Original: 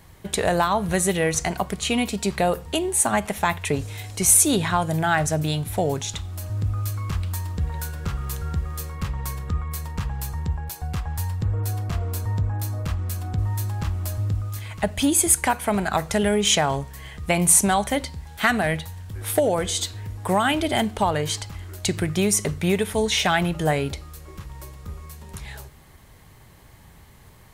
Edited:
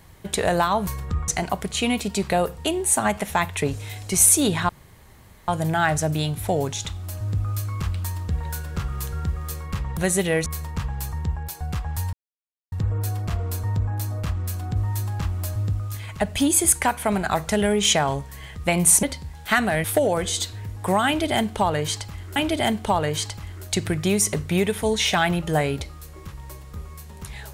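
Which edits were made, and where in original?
0.87–1.36 swap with 9.26–9.67
4.77 insert room tone 0.79 s
11.34 insert silence 0.59 s
17.65–17.95 cut
18.76–19.25 cut
20.48–21.77 loop, 2 plays

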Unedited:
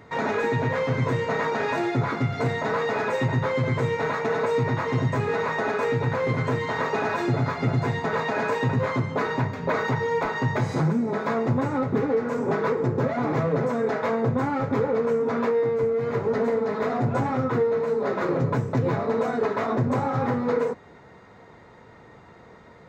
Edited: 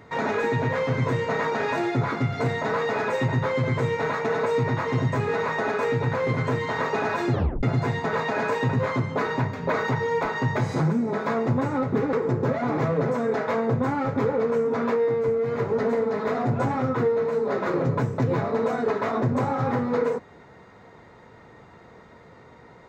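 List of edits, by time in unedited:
7.33 tape stop 0.30 s
12.13–12.68 cut

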